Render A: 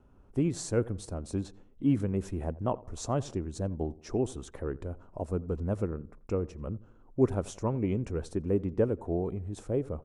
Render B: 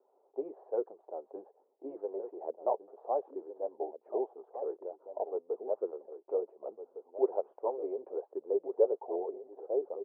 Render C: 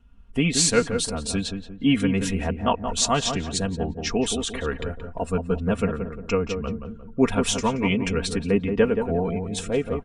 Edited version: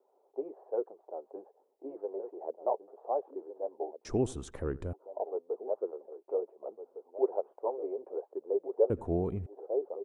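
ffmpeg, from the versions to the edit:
-filter_complex "[0:a]asplit=2[s0][s1];[1:a]asplit=3[s2][s3][s4];[s2]atrim=end=4.052[s5];[s0]atrim=start=4.048:end=4.932[s6];[s3]atrim=start=4.928:end=8.902[s7];[s1]atrim=start=8.898:end=9.462[s8];[s4]atrim=start=9.458[s9];[s5][s6]acrossfade=d=0.004:c1=hsin:c2=hsin[s10];[s10][s7]acrossfade=d=0.004:c1=hsin:c2=hsin[s11];[s11][s8]acrossfade=d=0.004:c1=hsin:c2=hsin[s12];[s12][s9]acrossfade=d=0.004:c1=hsin:c2=hsin"

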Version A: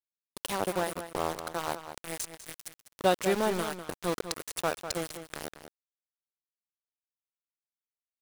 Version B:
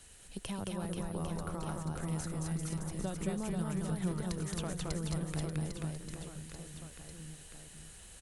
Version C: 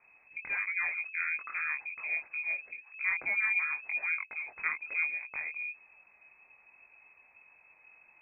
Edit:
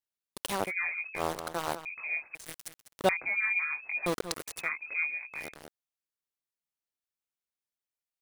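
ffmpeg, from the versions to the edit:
-filter_complex "[2:a]asplit=4[s0][s1][s2][s3];[0:a]asplit=5[s4][s5][s6][s7][s8];[s4]atrim=end=0.72[s9];[s0]atrim=start=0.62:end=1.23[s10];[s5]atrim=start=1.13:end=1.852[s11];[s1]atrim=start=1.848:end=2.352[s12];[s6]atrim=start=2.348:end=3.092[s13];[s2]atrim=start=3.088:end=4.062[s14];[s7]atrim=start=4.058:end=4.7[s15];[s3]atrim=start=4.46:end=5.56[s16];[s8]atrim=start=5.32[s17];[s9][s10]acrossfade=d=0.1:c1=tri:c2=tri[s18];[s18][s11]acrossfade=d=0.1:c1=tri:c2=tri[s19];[s19][s12]acrossfade=d=0.004:c1=hsin:c2=hsin[s20];[s20][s13]acrossfade=d=0.004:c1=hsin:c2=hsin[s21];[s21][s14]acrossfade=d=0.004:c1=hsin:c2=hsin[s22];[s22][s15]acrossfade=d=0.004:c1=hsin:c2=hsin[s23];[s23][s16]acrossfade=d=0.24:c1=tri:c2=tri[s24];[s24][s17]acrossfade=d=0.24:c1=tri:c2=tri"

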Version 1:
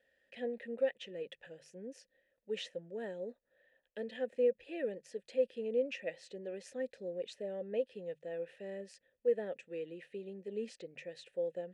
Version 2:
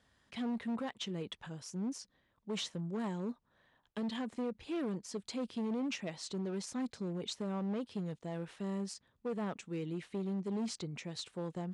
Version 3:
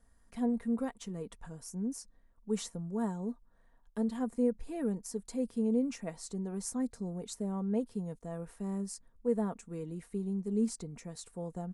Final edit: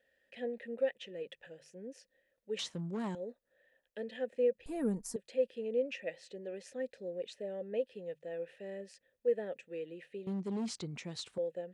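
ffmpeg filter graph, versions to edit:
-filter_complex "[1:a]asplit=2[s0][s1];[0:a]asplit=4[s2][s3][s4][s5];[s2]atrim=end=2.592[s6];[s0]atrim=start=2.588:end=3.152[s7];[s3]atrim=start=3.148:end=4.662[s8];[2:a]atrim=start=4.658:end=5.162[s9];[s4]atrim=start=5.158:end=10.272[s10];[s1]atrim=start=10.268:end=11.382[s11];[s5]atrim=start=11.378[s12];[s6][s7]acrossfade=d=0.004:c1=hsin:c2=hsin[s13];[s13][s8]acrossfade=d=0.004:c1=hsin:c2=hsin[s14];[s14][s9]acrossfade=d=0.004:c1=hsin:c2=hsin[s15];[s15][s10]acrossfade=d=0.004:c1=hsin:c2=hsin[s16];[s16][s11]acrossfade=d=0.004:c1=hsin:c2=hsin[s17];[s17][s12]acrossfade=d=0.004:c1=hsin:c2=hsin"

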